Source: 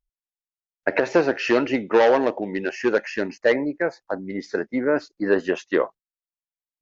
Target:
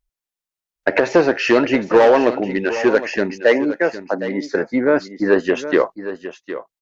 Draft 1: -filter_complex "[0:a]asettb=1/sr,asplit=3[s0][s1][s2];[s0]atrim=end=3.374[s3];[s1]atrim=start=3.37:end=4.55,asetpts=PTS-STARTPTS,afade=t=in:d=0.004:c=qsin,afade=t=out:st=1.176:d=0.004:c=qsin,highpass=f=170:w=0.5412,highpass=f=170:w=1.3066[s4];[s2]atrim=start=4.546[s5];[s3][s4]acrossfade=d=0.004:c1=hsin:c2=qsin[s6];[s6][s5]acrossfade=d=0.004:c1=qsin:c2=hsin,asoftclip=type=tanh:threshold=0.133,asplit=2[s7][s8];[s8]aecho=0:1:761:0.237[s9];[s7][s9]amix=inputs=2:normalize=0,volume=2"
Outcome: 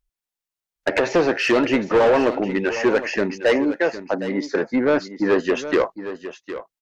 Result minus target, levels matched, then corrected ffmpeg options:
saturation: distortion +11 dB
-filter_complex "[0:a]asettb=1/sr,asplit=3[s0][s1][s2];[s0]atrim=end=3.374[s3];[s1]atrim=start=3.37:end=4.55,asetpts=PTS-STARTPTS,afade=t=in:d=0.004:c=qsin,afade=t=out:st=1.176:d=0.004:c=qsin,highpass=f=170:w=0.5412,highpass=f=170:w=1.3066[s4];[s2]atrim=start=4.546[s5];[s3][s4]acrossfade=d=0.004:c1=hsin:c2=qsin[s6];[s6][s5]acrossfade=d=0.004:c1=qsin:c2=hsin,asoftclip=type=tanh:threshold=0.398,asplit=2[s7][s8];[s8]aecho=0:1:761:0.237[s9];[s7][s9]amix=inputs=2:normalize=0,volume=2"

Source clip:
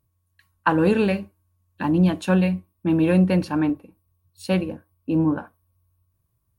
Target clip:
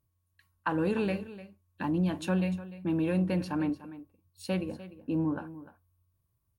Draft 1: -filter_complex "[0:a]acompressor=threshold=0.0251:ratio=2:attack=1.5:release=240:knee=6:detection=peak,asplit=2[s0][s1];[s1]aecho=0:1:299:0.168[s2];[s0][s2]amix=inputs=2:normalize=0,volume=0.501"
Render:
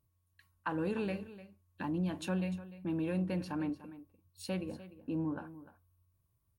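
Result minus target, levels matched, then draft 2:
compression: peak gain reduction +6 dB
-filter_complex "[0:a]acompressor=threshold=0.1:ratio=2:attack=1.5:release=240:knee=6:detection=peak,asplit=2[s0][s1];[s1]aecho=0:1:299:0.168[s2];[s0][s2]amix=inputs=2:normalize=0,volume=0.501"

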